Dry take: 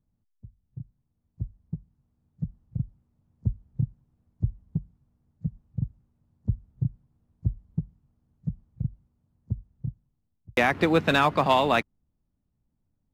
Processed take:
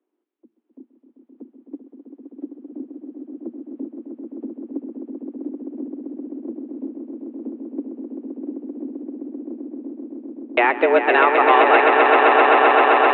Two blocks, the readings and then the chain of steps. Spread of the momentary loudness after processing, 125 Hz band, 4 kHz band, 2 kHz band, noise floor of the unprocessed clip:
20 LU, below −25 dB, +3.5 dB, +11.5 dB, −76 dBFS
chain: treble cut that deepens with the level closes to 2,400 Hz, closed at −20 dBFS
echo that builds up and dies away 130 ms, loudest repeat 8, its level −5.5 dB
single-sideband voice off tune +120 Hz 190–3,100 Hz
level +6 dB

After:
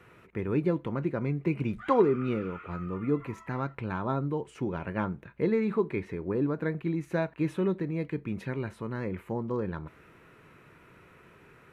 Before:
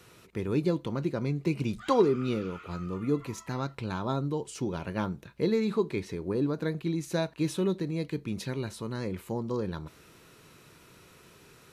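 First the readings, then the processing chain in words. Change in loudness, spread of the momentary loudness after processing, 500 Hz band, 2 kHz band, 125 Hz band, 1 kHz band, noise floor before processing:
0.0 dB, 9 LU, 0.0 dB, +2.0 dB, 0.0 dB, +1.0 dB, −56 dBFS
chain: high shelf with overshoot 3,100 Hz −13.5 dB, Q 1.5

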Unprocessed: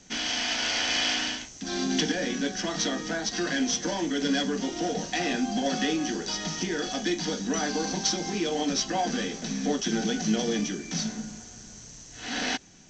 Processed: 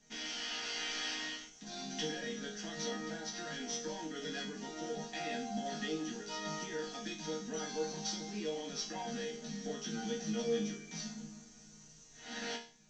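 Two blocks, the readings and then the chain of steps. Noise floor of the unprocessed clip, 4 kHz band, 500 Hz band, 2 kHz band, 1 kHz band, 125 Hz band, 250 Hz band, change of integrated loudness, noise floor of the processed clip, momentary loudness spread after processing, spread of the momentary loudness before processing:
−46 dBFS, −12.0 dB, −8.5 dB, −12.0 dB, −11.5 dB, −11.5 dB, −13.5 dB, −11.5 dB, −58 dBFS, 8 LU, 7 LU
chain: resonators tuned to a chord D#3 sus4, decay 0.4 s
level +5 dB

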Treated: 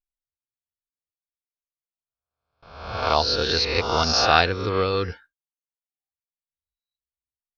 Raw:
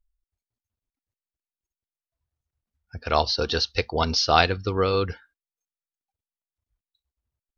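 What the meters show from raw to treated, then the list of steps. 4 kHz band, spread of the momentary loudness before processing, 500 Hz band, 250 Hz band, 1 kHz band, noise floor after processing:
+3.0 dB, 10 LU, +1.0 dB, +0.5 dB, +2.0 dB, below −85 dBFS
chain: peak hold with a rise ahead of every peak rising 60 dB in 0.90 s
noise gate with hold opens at −41 dBFS
level −1.5 dB

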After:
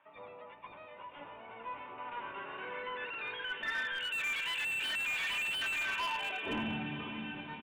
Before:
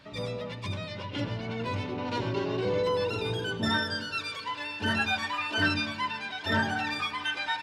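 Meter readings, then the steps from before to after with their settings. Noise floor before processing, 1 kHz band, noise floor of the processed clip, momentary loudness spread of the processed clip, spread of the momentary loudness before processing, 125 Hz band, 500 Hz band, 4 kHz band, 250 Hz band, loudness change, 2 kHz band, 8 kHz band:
−40 dBFS, −8.0 dB, −53 dBFS, 17 LU, 9 LU, −17.0 dB, −15.5 dB, −5.5 dB, −11.0 dB, −5.0 dB, −4.5 dB, −2.0 dB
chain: sub-octave generator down 1 octave, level +2 dB
low-shelf EQ 150 Hz −9 dB
in parallel at −2.5 dB: brickwall limiter −21.5 dBFS, peak gain reduction 7 dB
on the sum: band-pass filter sweep 2,700 Hz → 200 Hz, 0:05.68–0:06.71
gain into a clipping stage and back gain 35 dB
low-pass filter sweep 920 Hz → 2,900 Hz, 0:01.46–0:04.63
feedback delay with all-pass diffusion 555 ms, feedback 53%, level −9 dB
downsampling to 8,000 Hz
slew-rate limiting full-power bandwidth 53 Hz

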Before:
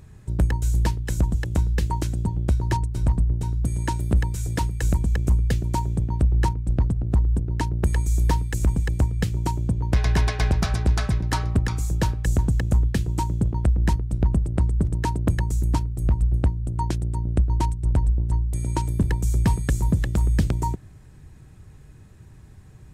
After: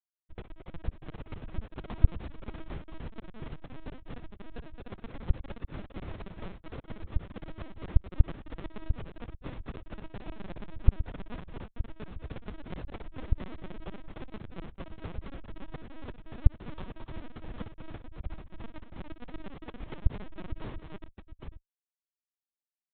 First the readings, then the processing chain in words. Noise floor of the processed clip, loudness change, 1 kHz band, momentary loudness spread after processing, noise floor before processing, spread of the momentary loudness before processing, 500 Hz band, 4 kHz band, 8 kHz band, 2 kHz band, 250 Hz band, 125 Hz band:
below −85 dBFS, −16.0 dB, −18.0 dB, 16 LU, −47 dBFS, 4 LU, −12.0 dB, −16.0 dB, below −40 dB, −15.5 dB, −15.5 dB, −16.0 dB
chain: Butterworth high-pass 170 Hz 36 dB per octave
downward compressor 12 to 1, threshold −31 dBFS, peak gain reduction 13.5 dB
moving average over 19 samples
comparator with hysteresis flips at −31.5 dBFS
on a send: multi-tap delay 58/210/288/794 ms −10.5/−9/−4/−8 dB
on the sum: linear-prediction vocoder at 8 kHz pitch kept
level +3.5 dB

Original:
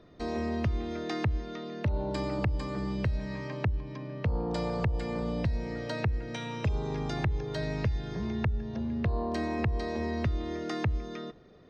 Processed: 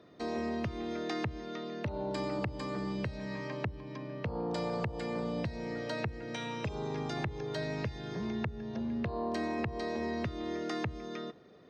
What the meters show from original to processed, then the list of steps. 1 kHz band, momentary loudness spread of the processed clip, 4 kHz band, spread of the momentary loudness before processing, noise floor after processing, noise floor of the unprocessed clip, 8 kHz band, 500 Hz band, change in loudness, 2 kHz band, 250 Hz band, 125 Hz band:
−1.5 dB, 5 LU, −1.0 dB, 5 LU, −46 dBFS, −44 dBFS, can't be measured, −1.5 dB, −4.0 dB, −1.5 dB, −2.5 dB, −8.0 dB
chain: Bessel high-pass filter 170 Hz, order 2
in parallel at −2.5 dB: brickwall limiter −28 dBFS, peak gain reduction 10.5 dB
on the sum: level −5 dB

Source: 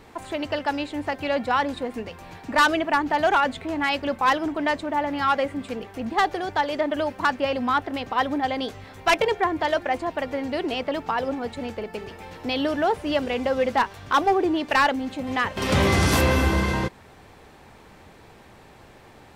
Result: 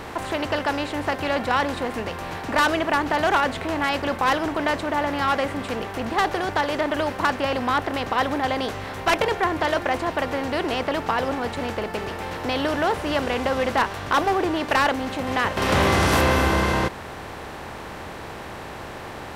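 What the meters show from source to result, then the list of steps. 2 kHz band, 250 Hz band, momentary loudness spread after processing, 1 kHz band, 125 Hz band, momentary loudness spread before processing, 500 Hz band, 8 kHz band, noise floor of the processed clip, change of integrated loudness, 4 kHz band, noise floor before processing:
+1.5 dB, 0.0 dB, 15 LU, +1.0 dB, +0.5 dB, 12 LU, +1.0 dB, +1.5 dB, −36 dBFS, +1.0 dB, +1.5 dB, −49 dBFS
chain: compressor on every frequency bin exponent 0.6
level −3.5 dB

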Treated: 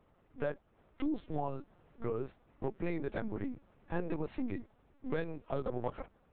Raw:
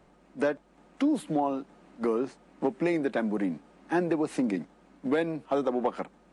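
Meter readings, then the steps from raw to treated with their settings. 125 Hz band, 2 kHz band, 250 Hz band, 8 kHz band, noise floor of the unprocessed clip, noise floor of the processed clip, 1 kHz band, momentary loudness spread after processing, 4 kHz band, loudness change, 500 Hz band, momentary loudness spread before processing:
−1.5 dB, −10.0 dB, −11.0 dB, can't be measured, −61 dBFS, −69 dBFS, −10.0 dB, 8 LU, −12.0 dB, −10.0 dB, −9.5 dB, 12 LU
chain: linear-prediction vocoder at 8 kHz pitch kept
level −8.5 dB

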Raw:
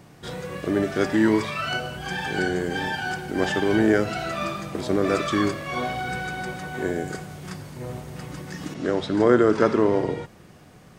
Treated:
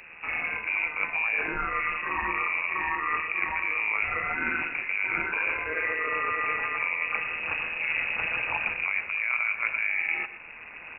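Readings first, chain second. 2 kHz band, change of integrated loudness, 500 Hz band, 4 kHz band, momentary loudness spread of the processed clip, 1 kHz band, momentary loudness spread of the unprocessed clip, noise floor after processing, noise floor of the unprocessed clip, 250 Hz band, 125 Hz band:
+5.0 dB, −3.0 dB, −17.5 dB, −10.5 dB, 3 LU, −2.5 dB, 16 LU, −44 dBFS, −49 dBFS, −22.0 dB, −19.5 dB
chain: camcorder AGC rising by 6.7 dB per second
low-shelf EQ 130 Hz −10.5 dB
reversed playback
downward compressor 6 to 1, threshold −30 dBFS, peak gain reduction 16 dB
reversed playback
amplitude modulation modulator 160 Hz, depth 55%
on a send: single-tap delay 121 ms −14 dB
on the sum: voice inversion scrambler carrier 2,700 Hz
level +7.5 dB

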